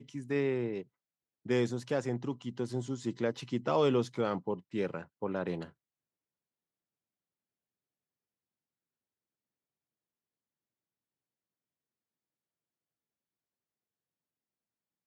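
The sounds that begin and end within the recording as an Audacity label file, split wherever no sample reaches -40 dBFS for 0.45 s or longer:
1.460000	5.660000	sound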